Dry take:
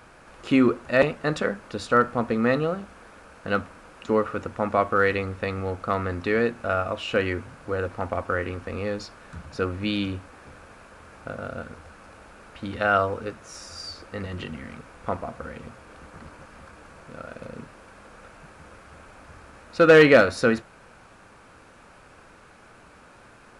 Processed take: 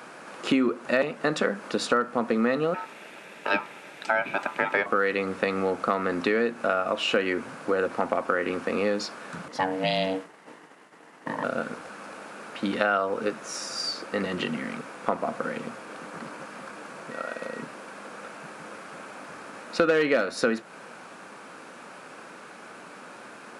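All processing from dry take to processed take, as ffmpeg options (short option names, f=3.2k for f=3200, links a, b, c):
-filter_complex "[0:a]asettb=1/sr,asplit=3[a][b][c];[a]atrim=end=2.744[d];[b]atrim=start=2.74:end=4.86,asetpts=PTS-STARTPTS,afade=t=in:d=0.004:c=qsin,afade=t=out:st=2.116:d=0.004:c=qsin,highpass=88,aeval=exprs='val(0)*sin(2*PI*1100*n/s)':c=same[e];[c]atrim=start=4.856[f];[d][e]acrossfade=d=0.004:c1=hsin:c2=qsin[g];[g][f]acrossfade=d=0.004:c1=qsin:c2=hsin,asettb=1/sr,asplit=3[h][i][j];[h]atrim=end=9.484[k];[i]atrim=start=9.48:end=11.44,asetpts=PTS-STARTPTS,afade=t=in:d=0.004:c=qsin,afade=t=out:st=1.956:d=0.004:c=qsin,agate=range=-33dB:threshold=-42dB:ratio=3:release=100:detection=peak,aeval=exprs='val(0)*sin(2*PI*380*n/s)':c=same[l];[j]atrim=start=11.436[m];[k][l]acrossfade=d=0.004:c1=hsin:c2=qsin[n];[n][m]acrossfade=d=0.004:c1=qsin:c2=hsin,asettb=1/sr,asplit=3[o][p][q];[o]atrim=end=17.114[r];[p]atrim=start=17.11:end=17.62,asetpts=PTS-STARTPTS,afade=t=in:d=0.004:c=qsin,afade=t=out:st=0.506:d=0.004:c=qsin,highpass=f=430:p=1,aeval=exprs='val(0)+0.00316*sin(2*PI*1900*n/s)':c=same[s];[q]atrim=start=17.616[t];[r][s]acrossfade=d=0.004:c1=hsin:c2=qsin[u];[u][t]acrossfade=d=0.004:c1=qsin:c2=hsin,highpass=f=180:w=0.5412,highpass=f=180:w=1.3066,acompressor=threshold=-28dB:ratio=5,volume=7dB"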